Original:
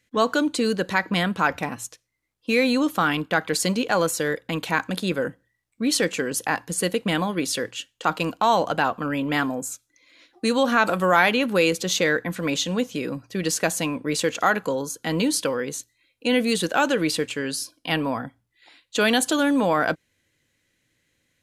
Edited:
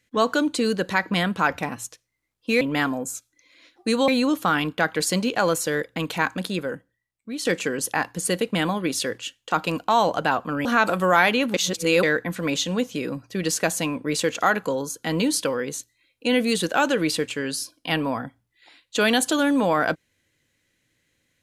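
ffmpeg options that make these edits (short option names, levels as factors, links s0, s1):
-filter_complex "[0:a]asplit=7[s0][s1][s2][s3][s4][s5][s6];[s0]atrim=end=2.612[s7];[s1]atrim=start=9.178:end=10.652[s8];[s2]atrim=start=2.608:end=5.98,asetpts=PTS-STARTPTS,afade=t=out:st=2.242:d=1.13:c=qua:silence=0.354813[s9];[s3]atrim=start=5.98:end=9.182,asetpts=PTS-STARTPTS,afade=t=in:d=0.004:c=hsin:silence=0.354813[s10];[s4]atrim=start=10.648:end=11.542[s11];[s5]atrim=start=11.538:end=12.032,asetpts=PTS-STARTPTS,areverse[s12];[s6]atrim=start=12.028[s13];[s7][s8]acrossfade=d=0.004:c1=hsin:c2=hsin[s14];[s9][s10]concat=n=2:v=0:a=1[s15];[s14][s15]acrossfade=d=0.004:c1=hsin:c2=hsin[s16];[s16][s11]acrossfade=d=0.004:c1=hsin:c2=hsin[s17];[s17][s12]acrossfade=d=0.004:c1=hsin:c2=hsin[s18];[s18][s13]acrossfade=d=0.004:c1=hsin:c2=hsin"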